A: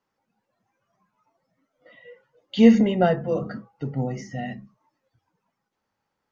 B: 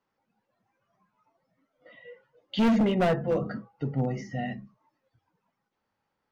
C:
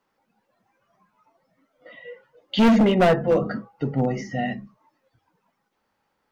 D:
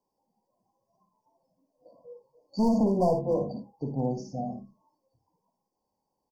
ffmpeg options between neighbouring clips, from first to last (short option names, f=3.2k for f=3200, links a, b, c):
-af "lowpass=4.9k,volume=18.5dB,asoftclip=hard,volume=-18.5dB,volume=-1dB"
-af "equalizer=f=110:w=1.1:g=-5.5,volume=7.5dB"
-filter_complex "[0:a]afftfilt=real='re*(1-between(b*sr/4096,1100,4400))':imag='im*(1-between(b*sr/4096,1100,4400))':win_size=4096:overlap=0.75,asplit=2[a][b];[b]aecho=0:1:56|77:0.422|0.158[c];[a][c]amix=inputs=2:normalize=0,volume=-7.5dB"